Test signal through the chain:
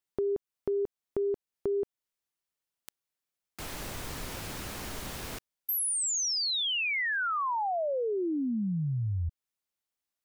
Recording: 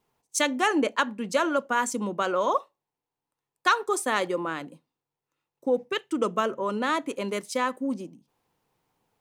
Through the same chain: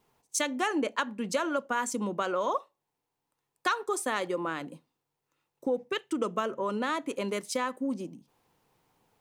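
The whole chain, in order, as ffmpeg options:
ffmpeg -i in.wav -af "acompressor=threshold=-37dB:ratio=2,volume=4dB" out.wav

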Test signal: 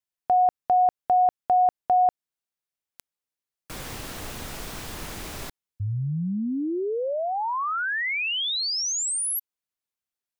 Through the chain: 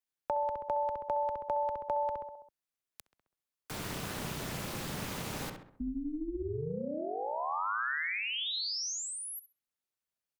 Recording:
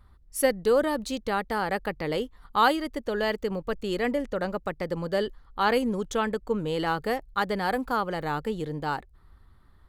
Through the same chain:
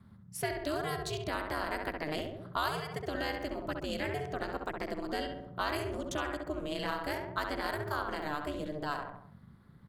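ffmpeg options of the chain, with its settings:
ffmpeg -i in.wav -filter_complex "[0:a]asplit=2[link_01][link_02];[link_02]adelay=66,lowpass=frequency=2300:poles=1,volume=-4.5dB,asplit=2[link_03][link_04];[link_04]adelay=66,lowpass=frequency=2300:poles=1,volume=0.5,asplit=2[link_05][link_06];[link_06]adelay=66,lowpass=frequency=2300:poles=1,volume=0.5,asplit=2[link_07][link_08];[link_08]adelay=66,lowpass=frequency=2300:poles=1,volume=0.5,asplit=2[link_09][link_10];[link_10]adelay=66,lowpass=frequency=2300:poles=1,volume=0.5,asplit=2[link_11][link_12];[link_12]adelay=66,lowpass=frequency=2300:poles=1,volume=0.5[link_13];[link_01][link_03][link_05][link_07][link_09][link_11][link_13]amix=inputs=7:normalize=0,aeval=exprs='val(0)*sin(2*PI*150*n/s)':channel_layout=same,acrossover=split=100|1400|4800[link_14][link_15][link_16][link_17];[link_14]acompressor=threshold=-48dB:ratio=4[link_18];[link_15]acompressor=threshold=-35dB:ratio=4[link_19];[link_16]acompressor=threshold=-37dB:ratio=4[link_20];[link_17]acompressor=threshold=-42dB:ratio=4[link_21];[link_18][link_19][link_20][link_21]amix=inputs=4:normalize=0" out.wav

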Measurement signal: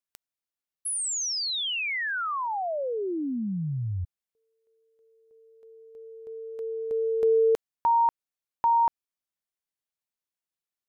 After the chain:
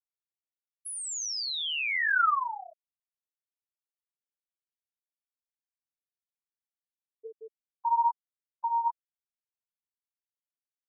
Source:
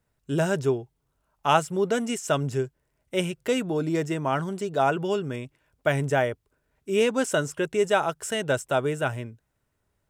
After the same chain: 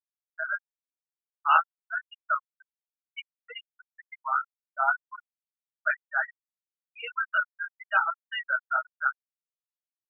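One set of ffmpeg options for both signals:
ffmpeg -i in.wav -af "flanger=delay=20:depth=5.5:speed=0.97,highpass=frequency=1300:width_type=q:width=3,afftfilt=real='re*gte(hypot(re,im),0.126)':imag='im*gte(hypot(re,im),0.126)':win_size=1024:overlap=0.75" out.wav

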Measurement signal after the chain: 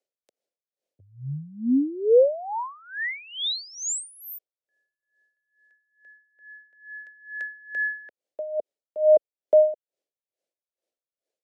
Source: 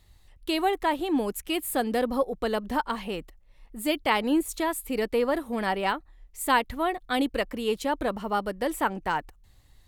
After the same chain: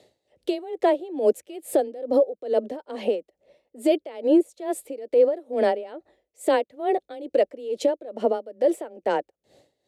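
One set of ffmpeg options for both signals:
ffmpeg -i in.wav -filter_complex "[0:a]highpass=380,lowpass=7900,asplit=2[link_01][link_02];[link_02]acompressor=threshold=-36dB:ratio=6,volume=0.5dB[link_03];[link_01][link_03]amix=inputs=2:normalize=0,afreqshift=17,lowshelf=frequency=780:width_type=q:width=3:gain=11,alimiter=limit=-10dB:level=0:latency=1:release=71,aeval=exprs='val(0)*pow(10,-21*(0.5-0.5*cos(2*PI*2.3*n/s))/20)':channel_layout=same" out.wav

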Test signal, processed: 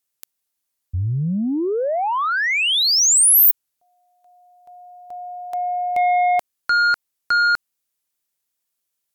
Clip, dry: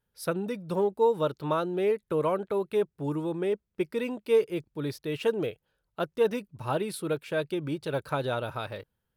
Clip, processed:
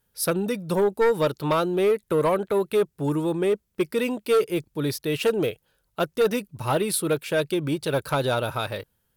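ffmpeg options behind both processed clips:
ffmpeg -i in.wav -af "aeval=exprs='0.224*sin(PI/2*1.78*val(0)/0.224)':channel_layout=same,aemphasis=mode=production:type=cd,volume=-2dB" out.wav

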